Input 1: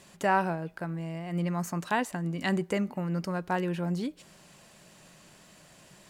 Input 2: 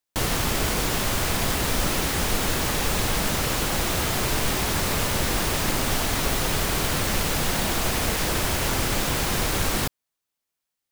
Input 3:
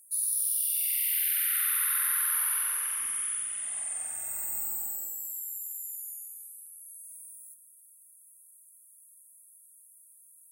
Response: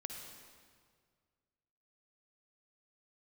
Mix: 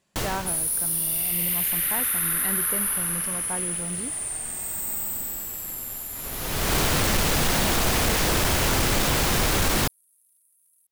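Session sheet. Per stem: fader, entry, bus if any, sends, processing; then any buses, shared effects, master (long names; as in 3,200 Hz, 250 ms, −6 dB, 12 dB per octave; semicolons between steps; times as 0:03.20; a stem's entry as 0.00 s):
−12.5 dB, 0.00 s, no send, no processing
−3.5 dB, 0.00 s, no send, automatic ducking −24 dB, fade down 0.70 s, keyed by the first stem
−4.0 dB, 0.35 s, no send, parametric band 220 Hz +13 dB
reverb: not used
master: leveller curve on the samples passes 2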